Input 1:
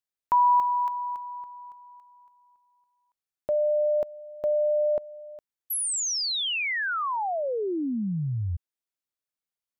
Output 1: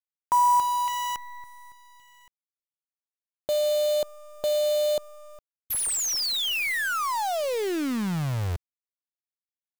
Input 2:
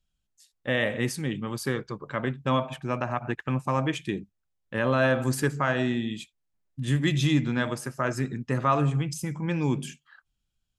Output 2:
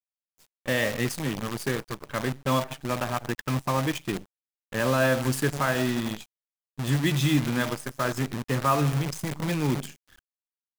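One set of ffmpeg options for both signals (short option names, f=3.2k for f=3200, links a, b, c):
-af "aeval=exprs='0.316*(cos(1*acos(clip(val(0)/0.316,-1,1)))-cos(1*PI/2))+0.00178*(cos(8*acos(clip(val(0)/0.316,-1,1)))-cos(8*PI/2))':c=same,acrusher=bits=6:dc=4:mix=0:aa=0.000001"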